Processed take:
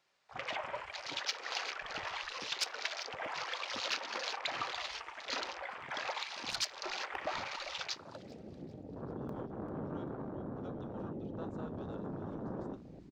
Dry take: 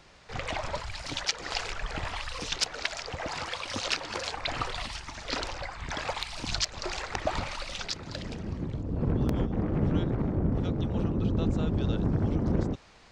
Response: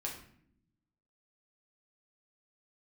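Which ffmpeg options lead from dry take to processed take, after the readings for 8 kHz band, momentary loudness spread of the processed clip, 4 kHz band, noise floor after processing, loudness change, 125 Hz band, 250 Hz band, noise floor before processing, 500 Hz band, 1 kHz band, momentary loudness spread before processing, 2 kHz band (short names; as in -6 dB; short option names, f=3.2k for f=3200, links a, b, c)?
-7.5 dB, 8 LU, -5.0 dB, -52 dBFS, -8.0 dB, -18.0 dB, -13.0 dB, -47 dBFS, -8.0 dB, -4.5 dB, 8 LU, -4.0 dB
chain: -filter_complex "[0:a]asoftclip=type=tanh:threshold=-22.5dB,highpass=f=650:p=1,asplit=5[a][b][c][d][e];[b]adelay=392,afreqshift=-32,volume=-11.5dB[f];[c]adelay=784,afreqshift=-64,volume=-19.5dB[g];[d]adelay=1176,afreqshift=-96,volume=-27.4dB[h];[e]adelay=1568,afreqshift=-128,volume=-35.4dB[i];[a][f][g][h][i]amix=inputs=5:normalize=0,asplit=2[j][k];[1:a]atrim=start_sample=2205[l];[k][l]afir=irnorm=-1:irlink=0,volume=-7.5dB[m];[j][m]amix=inputs=2:normalize=0,afwtdn=0.01,volume=-4.5dB"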